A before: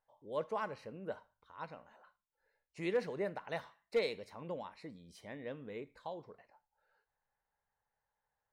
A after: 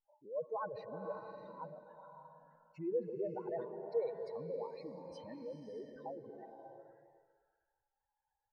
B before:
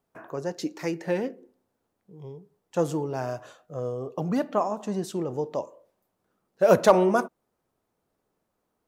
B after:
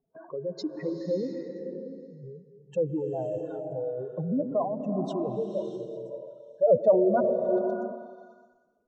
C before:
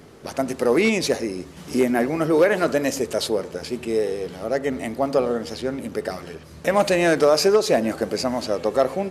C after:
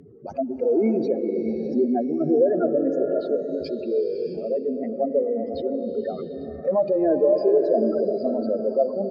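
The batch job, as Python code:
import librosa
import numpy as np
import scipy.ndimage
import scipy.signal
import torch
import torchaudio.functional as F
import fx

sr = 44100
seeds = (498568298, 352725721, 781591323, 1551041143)

y = fx.spec_expand(x, sr, power=3.0)
y = fx.echo_stepped(y, sr, ms=122, hz=250.0, octaves=0.7, feedback_pct=70, wet_db=-9)
y = fx.env_lowpass_down(y, sr, base_hz=1200.0, full_db=-21.0)
y = fx.rev_bloom(y, sr, seeds[0], attack_ms=620, drr_db=5.5)
y = y * librosa.db_to_amplitude(-1.5)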